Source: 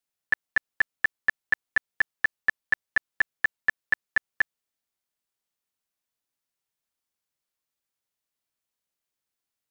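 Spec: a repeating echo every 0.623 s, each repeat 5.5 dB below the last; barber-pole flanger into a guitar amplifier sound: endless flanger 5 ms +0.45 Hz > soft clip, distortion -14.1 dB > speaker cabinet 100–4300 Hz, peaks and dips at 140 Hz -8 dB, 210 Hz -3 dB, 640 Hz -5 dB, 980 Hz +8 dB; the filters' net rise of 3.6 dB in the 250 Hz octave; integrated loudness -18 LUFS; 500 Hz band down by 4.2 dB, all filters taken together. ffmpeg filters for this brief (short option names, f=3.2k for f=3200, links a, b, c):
-filter_complex "[0:a]equalizer=f=250:t=o:g=8.5,equalizer=f=500:t=o:g=-6,aecho=1:1:623|1246|1869|2492|3115|3738|4361:0.531|0.281|0.149|0.079|0.0419|0.0222|0.0118,asplit=2[a][b];[b]adelay=5,afreqshift=0.45[c];[a][c]amix=inputs=2:normalize=1,asoftclip=threshold=-19.5dB,highpass=100,equalizer=f=140:t=q:w=4:g=-8,equalizer=f=210:t=q:w=4:g=-3,equalizer=f=640:t=q:w=4:g=-5,equalizer=f=980:t=q:w=4:g=8,lowpass=f=4.3k:w=0.5412,lowpass=f=4.3k:w=1.3066,volume=14.5dB"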